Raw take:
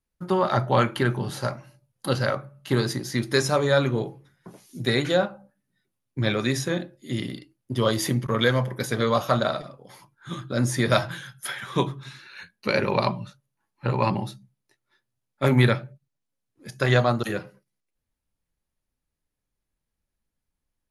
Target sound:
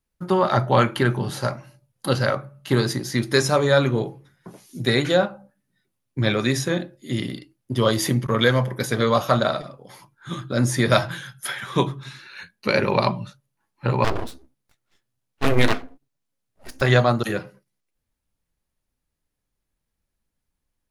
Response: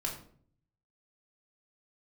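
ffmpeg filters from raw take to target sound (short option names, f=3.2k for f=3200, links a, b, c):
-filter_complex "[0:a]asettb=1/sr,asplit=3[a][b][c];[a]atrim=end=14.044[d];[b]atrim=start=14.04:end=16.82,asetpts=PTS-STARTPTS,afade=t=in:d=0.004:c=qsin,afade=t=out:st=2.776:d=0.004:c=qsin,aeval=exprs='abs(val(0))':c=same[e];[c]atrim=start=16.816[f];[d][e]acrossfade=d=0.004:c1=hsin:c2=qsin[g];[g][f]acrossfade=d=0.004:c1=qsin:c2=hsin,volume=3dB"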